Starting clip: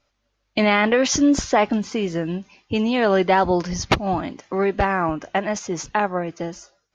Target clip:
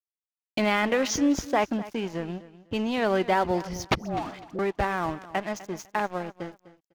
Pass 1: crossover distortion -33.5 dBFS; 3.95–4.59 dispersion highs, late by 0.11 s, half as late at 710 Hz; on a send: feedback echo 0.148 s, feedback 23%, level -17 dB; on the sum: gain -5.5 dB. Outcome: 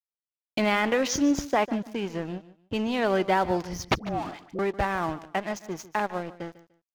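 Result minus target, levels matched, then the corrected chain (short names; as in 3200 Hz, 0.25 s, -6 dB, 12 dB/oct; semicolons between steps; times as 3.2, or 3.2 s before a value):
echo 0.103 s early
crossover distortion -33.5 dBFS; 3.95–4.59 dispersion highs, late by 0.11 s, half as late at 710 Hz; on a send: feedback echo 0.251 s, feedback 23%, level -17 dB; on the sum: gain -5.5 dB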